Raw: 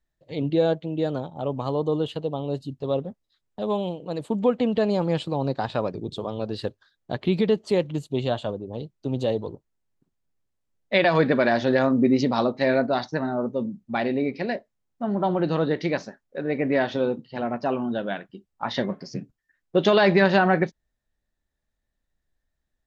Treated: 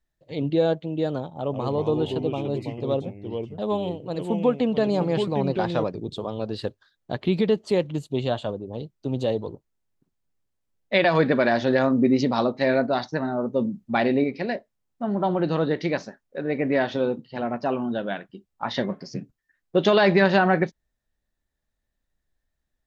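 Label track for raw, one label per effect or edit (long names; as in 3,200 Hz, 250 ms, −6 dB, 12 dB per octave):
1.310000	5.840000	delay with pitch and tempo change per echo 133 ms, each echo −3 semitones, echoes 2, each echo −6 dB
13.540000	14.240000	clip gain +3.5 dB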